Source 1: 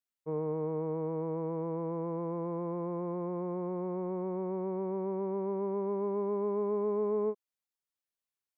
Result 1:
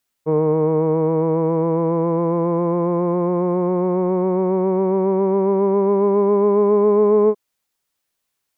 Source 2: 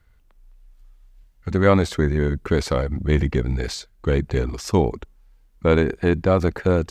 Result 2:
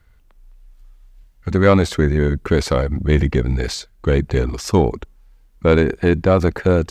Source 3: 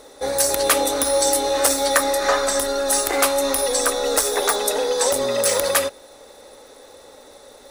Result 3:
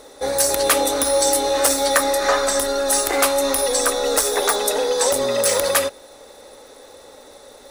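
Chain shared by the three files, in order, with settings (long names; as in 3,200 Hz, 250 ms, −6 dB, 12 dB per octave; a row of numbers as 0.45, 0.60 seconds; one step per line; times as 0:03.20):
soft clipping −5 dBFS
loudness normalisation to −18 LKFS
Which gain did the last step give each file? +16.5, +4.0, +1.5 decibels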